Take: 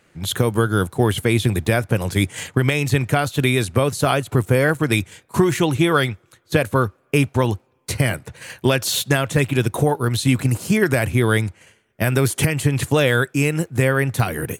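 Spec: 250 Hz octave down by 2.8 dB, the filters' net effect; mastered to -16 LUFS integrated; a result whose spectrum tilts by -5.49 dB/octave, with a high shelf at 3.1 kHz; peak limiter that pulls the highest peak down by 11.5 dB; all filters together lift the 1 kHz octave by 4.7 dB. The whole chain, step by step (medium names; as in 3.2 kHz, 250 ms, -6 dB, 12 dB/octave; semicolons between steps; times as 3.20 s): peaking EQ 250 Hz -4.5 dB; peaking EQ 1 kHz +7.5 dB; treble shelf 3.1 kHz -7 dB; trim +9.5 dB; peak limiter -4 dBFS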